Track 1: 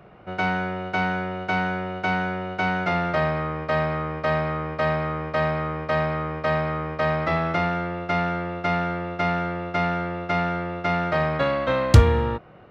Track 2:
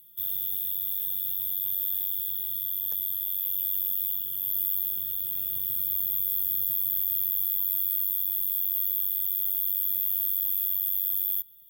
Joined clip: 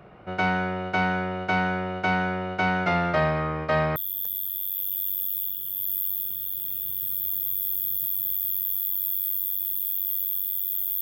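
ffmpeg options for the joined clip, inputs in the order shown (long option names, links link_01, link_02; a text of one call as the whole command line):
ffmpeg -i cue0.wav -i cue1.wav -filter_complex "[0:a]apad=whole_dur=11.01,atrim=end=11.01,atrim=end=3.962[link_01];[1:a]atrim=start=2.628:end=9.68[link_02];[link_01][link_02]acrossfade=duration=0.004:curve1=hsin:curve2=hsin" out.wav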